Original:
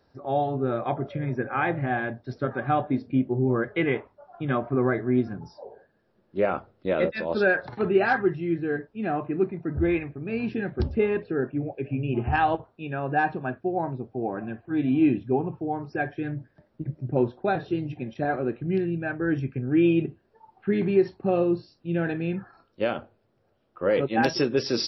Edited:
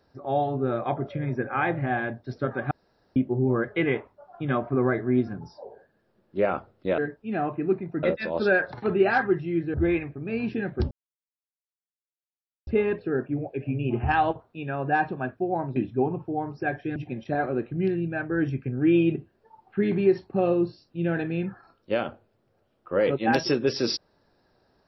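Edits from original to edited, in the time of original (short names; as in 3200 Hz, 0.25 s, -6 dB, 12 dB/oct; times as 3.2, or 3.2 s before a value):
2.71–3.16 room tone
8.69–9.74 move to 6.98
10.91 insert silence 1.76 s
14–15.09 cut
16.29–17.86 cut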